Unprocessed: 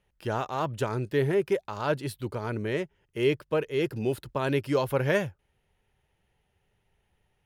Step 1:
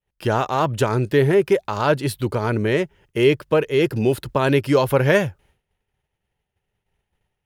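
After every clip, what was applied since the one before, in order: in parallel at -1.5 dB: compression, threshold -31 dBFS, peak gain reduction 11.5 dB; on the sum: expander -55 dBFS; trim +6.5 dB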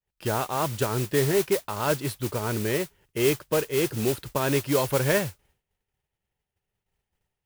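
modulation noise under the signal 10 dB; trim -7 dB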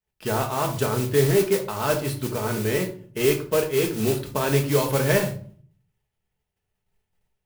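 simulated room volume 430 m³, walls furnished, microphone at 1.5 m

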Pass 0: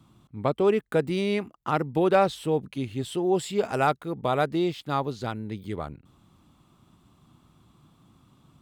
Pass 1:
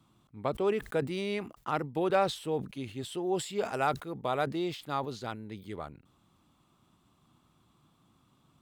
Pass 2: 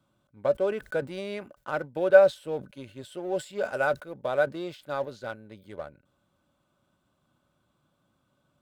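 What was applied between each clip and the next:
bass shelf 290 Hz -6 dB; decay stretcher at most 140 dB/s; trim -5 dB
small resonant body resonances 570/1500 Hz, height 17 dB, ringing for 60 ms; in parallel at -5 dB: crossover distortion -37 dBFS; on the sum: trim -6.5 dB

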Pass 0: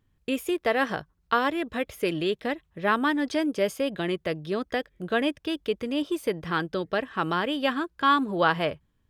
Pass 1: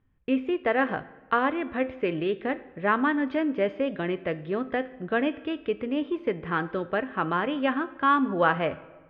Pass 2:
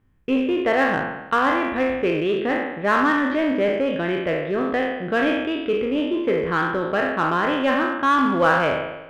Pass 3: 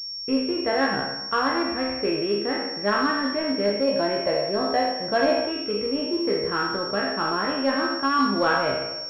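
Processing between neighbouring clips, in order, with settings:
low-pass 2.6 kHz 24 dB/octave; feedback comb 260 Hz, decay 0.37 s, harmonics all, mix 60%; on a send at -16 dB: reverberation RT60 1.3 s, pre-delay 3 ms; on the sum: trim +7 dB
spectral sustain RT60 0.99 s; in parallel at -4.5 dB: overload inside the chain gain 23 dB
time-frequency box 3.86–5.52 s, 510–1100 Hz +7 dB; feedback comb 68 Hz, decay 0.17 s, harmonics all, mix 100%; class-D stage that switches slowly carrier 5.5 kHz; trim +1.5 dB

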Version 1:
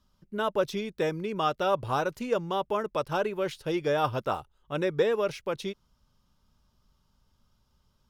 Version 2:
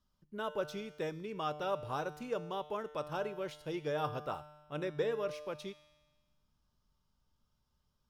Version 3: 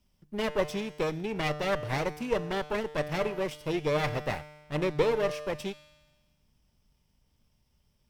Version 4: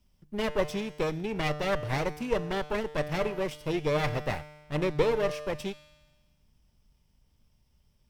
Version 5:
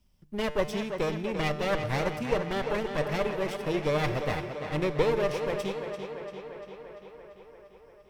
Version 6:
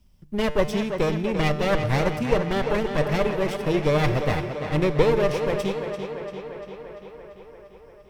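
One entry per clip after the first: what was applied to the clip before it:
feedback comb 150 Hz, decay 1.3 s, mix 70%
comb filter that takes the minimum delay 0.37 ms; trim +9 dB
bass shelf 94 Hz +5.5 dB
tape echo 343 ms, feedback 73%, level -7 dB, low-pass 5.4 kHz
bass shelf 270 Hz +5 dB; trim +4.5 dB

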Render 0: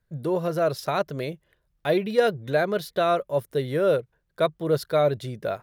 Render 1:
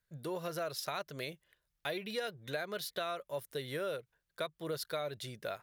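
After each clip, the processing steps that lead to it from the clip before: tilt shelf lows -7 dB, about 1.1 kHz; compression, threshold -27 dBFS, peak gain reduction 9 dB; trim -7 dB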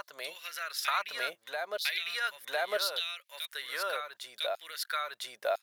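LFO high-pass saw down 0.72 Hz 610–4400 Hz; reverse echo 1004 ms -4 dB; trim +4.5 dB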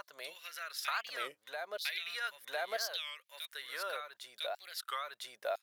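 warped record 33 1/3 rpm, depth 250 cents; trim -5.5 dB

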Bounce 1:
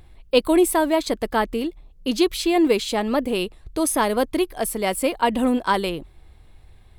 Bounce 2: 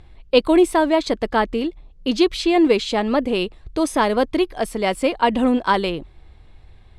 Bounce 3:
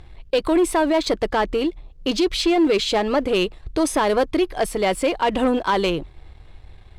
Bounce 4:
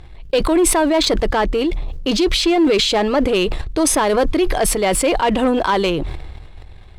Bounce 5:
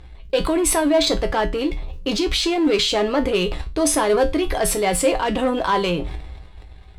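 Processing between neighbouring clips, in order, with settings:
low-pass 5.7 kHz 12 dB/octave; trim +2.5 dB
peaking EQ 230 Hz -10.5 dB 0.27 oct; peak limiter -11.5 dBFS, peak gain reduction 9 dB; waveshaping leveller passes 1
decay stretcher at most 34 dB/s; trim +2.5 dB
feedback comb 59 Hz, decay 0.24 s, harmonics odd, mix 80%; trim +4.5 dB

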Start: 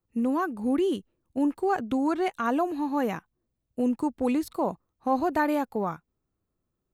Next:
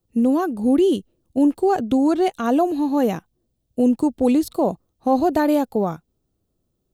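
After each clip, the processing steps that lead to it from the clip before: high-order bell 1.5 kHz -8.5 dB; trim +8.5 dB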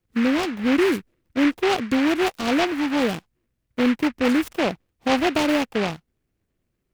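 delay time shaken by noise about 1.7 kHz, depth 0.15 ms; trim -2.5 dB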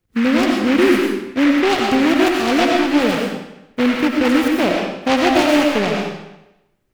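reverberation RT60 0.90 s, pre-delay 55 ms, DRR 0 dB; trim +3.5 dB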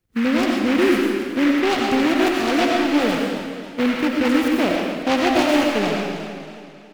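delay 323 ms -16.5 dB; companded quantiser 8-bit; modulated delay 271 ms, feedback 50%, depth 93 cents, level -11 dB; trim -3.5 dB

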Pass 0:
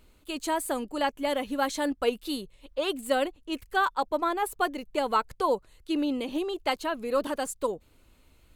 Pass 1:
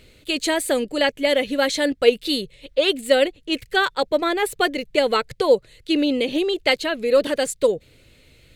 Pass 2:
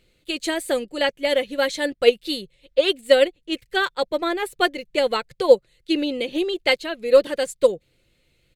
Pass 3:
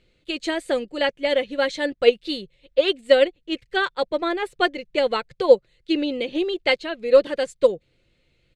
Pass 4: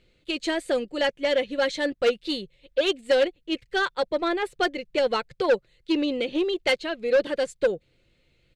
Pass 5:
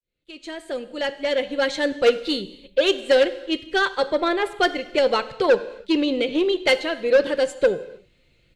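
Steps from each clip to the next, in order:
graphic EQ 125/500/1000/2000/4000/8000 Hz +12/+11/-9/+11/+9/+4 dB; in parallel at -1 dB: gain riding within 3 dB 0.5 s; on the sum: trim -3.5 dB
comb 5.7 ms, depth 32%; upward expansion 1.5:1, over -37 dBFS; trim +2 dB
distance through air 84 m
saturation -15 dBFS, distortion -9 dB
fade-in on the opening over 1.95 s; gated-style reverb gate 340 ms falling, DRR 12 dB; trim +4 dB

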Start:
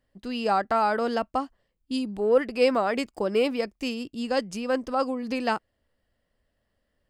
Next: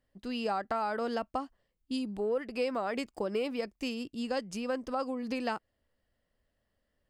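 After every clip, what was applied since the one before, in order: compression 4:1, threshold -25 dBFS, peak gain reduction 9 dB; trim -4 dB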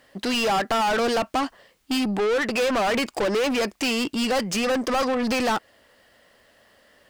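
overdrive pedal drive 30 dB, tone 6.5 kHz, clips at -20 dBFS; trim +4 dB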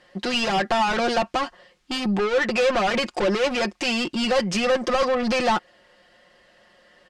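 low-pass 6.3 kHz 12 dB/octave; comb 5.6 ms, depth 69%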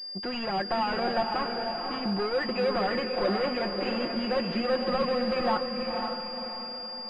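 echo that smears into a reverb 514 ms, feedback 47%, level -4 dB; class-D stage that switches slowly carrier 4.8 kHz; trim -7 dB

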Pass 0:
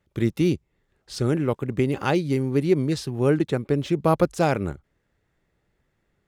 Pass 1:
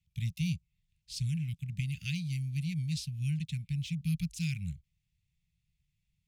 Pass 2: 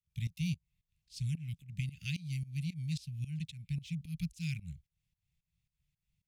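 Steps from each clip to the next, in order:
Chebyshev band-stop 170–2400 Hz, order 4; trim -5 dB
volume shaper 111 bpm, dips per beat 2, -20 dB, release 230 ms; trim -2 dB

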